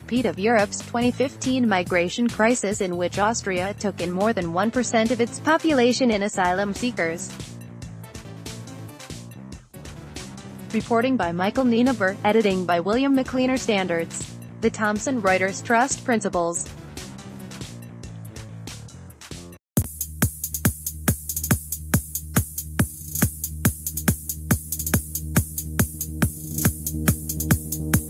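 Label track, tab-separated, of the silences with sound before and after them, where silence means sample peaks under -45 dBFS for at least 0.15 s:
19.570000	19.770000	silence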